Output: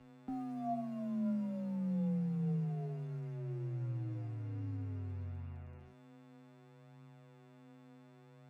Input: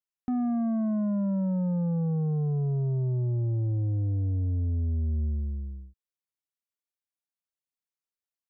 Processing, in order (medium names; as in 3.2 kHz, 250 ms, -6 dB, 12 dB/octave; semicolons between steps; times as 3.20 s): mains buzz 120 Hz, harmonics 23, -44 dBFS -7 dB/octave; crossover distortion -52 dBFS; flange 0.64 Hz, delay 3.6 ms, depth 4 ms, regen +35%; frequency shift +17 Hz; feedback comb 700 Hz, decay 0.45 s, mix 90%; trim +12.5 dB